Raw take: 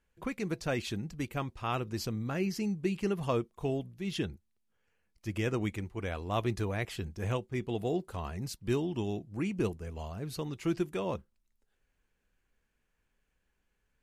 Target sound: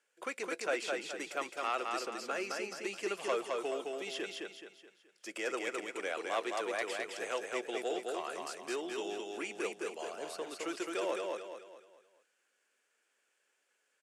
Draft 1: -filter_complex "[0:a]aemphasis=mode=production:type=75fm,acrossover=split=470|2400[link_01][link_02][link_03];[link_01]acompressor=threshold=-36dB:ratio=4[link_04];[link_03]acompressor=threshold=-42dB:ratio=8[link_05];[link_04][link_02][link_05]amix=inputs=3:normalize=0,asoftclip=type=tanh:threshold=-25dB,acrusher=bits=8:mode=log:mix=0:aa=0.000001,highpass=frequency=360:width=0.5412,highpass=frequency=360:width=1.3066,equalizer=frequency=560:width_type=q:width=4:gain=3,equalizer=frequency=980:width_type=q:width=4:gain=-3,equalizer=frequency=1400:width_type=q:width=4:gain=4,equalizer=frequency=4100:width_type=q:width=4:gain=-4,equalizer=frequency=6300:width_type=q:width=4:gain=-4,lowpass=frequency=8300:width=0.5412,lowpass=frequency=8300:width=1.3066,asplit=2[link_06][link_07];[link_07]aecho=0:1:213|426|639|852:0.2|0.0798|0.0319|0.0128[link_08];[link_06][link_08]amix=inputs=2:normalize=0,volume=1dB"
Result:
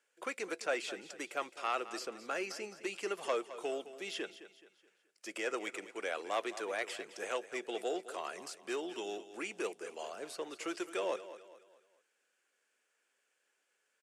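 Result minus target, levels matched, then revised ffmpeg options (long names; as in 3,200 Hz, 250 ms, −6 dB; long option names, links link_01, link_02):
echo-to-direct −11 dB
-filter_complex "[0:a]aemphasis=mode=production:type=75fm,acrossover=split=470|2400[link_01][link_02][link_03];[link_01]acompressor=threshold=-36dB:ratio=4[link_04];[link_03]acompressor=threshold=-42dB:ratio=8[link_05];[link_04][link_02][link_05]amix=inputs=3:normalize=0,asoftclip=type=tanh:threshold=-25dB,acrusher=bits=8:mode=log:mix=0:aa=0.000001,highpass=frequency=360:width=0.5412,highpass=frequency=360:width=1.3066,equalizer=frequency=560:width_type=q:width=4:gain=3,equalizer=frequency=980:width_type=q:width=4:gain=-3,equalizer=frequency=1400:width_type=q:width=4:gain=4,equalizer=frequency=4100:width_type=q:width=4:gain=-4,equalizer=frequency=6300:width_type=q:width=4:gain=-4,lowpass=frequency=8300:width=0.5412,lowpass=frequency=8300:width=1.3066,asplit=2[link_06][link_07];[link_07]aecho=0:1:213|426|639|852|1065:0.708|0.283|0.113|0.0453|0.0181[link_08];[link_06][link_08]amix=inputs=2:normalize=0,volume=1dB"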